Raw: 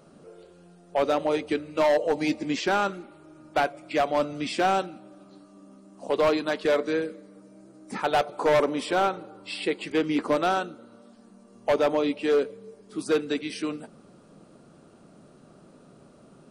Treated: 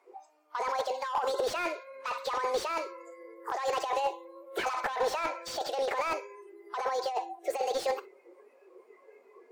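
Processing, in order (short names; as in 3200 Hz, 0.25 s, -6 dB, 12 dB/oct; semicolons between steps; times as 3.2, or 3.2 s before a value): Chebyshev band-pass 210–8900 Hz, order 4; high shelf 6100 Hz -11.5 dB; thinning echo 0.116 s, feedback 29%, level -21 dB; negative-ratio compressor -30 dBFS, ratio -1; speed mistake 45 rpm record played at 78 rpm; spectral noise reduction 17 dB; slew limiter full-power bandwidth 62 Hz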